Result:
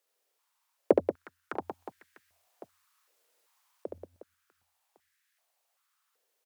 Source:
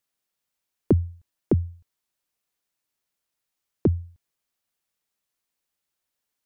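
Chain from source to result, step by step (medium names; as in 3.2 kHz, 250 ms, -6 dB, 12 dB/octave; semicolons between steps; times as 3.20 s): 1.55–3.98 s: compressor with a negative ratio -29 dBFS, ratio -1; Chebyshev shaper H 5 -28 dB, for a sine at -9 dBFS; on a send: reverse bouncing-ball echo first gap 70 ms, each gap 1.6×, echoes 5; on the sum: step-sequenced high-pass 2.6 Hz 470–1700 Hz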